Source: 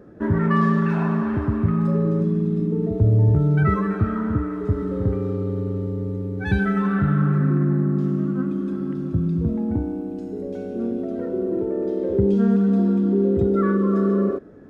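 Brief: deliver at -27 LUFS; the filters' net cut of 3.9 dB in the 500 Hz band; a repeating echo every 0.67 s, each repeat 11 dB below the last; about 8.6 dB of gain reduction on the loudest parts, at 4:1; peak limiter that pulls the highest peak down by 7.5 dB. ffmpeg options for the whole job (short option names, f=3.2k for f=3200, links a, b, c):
-af "equalizer=f=500:t=o:g=-5.5,acompressor=threshold=-24dB:ratio=4,alimiter=limit=-22.5dB:level=0:latency=1,aecho=1:1:670|1340|2010:0.282|0.0789|0.0221,volume=3dB"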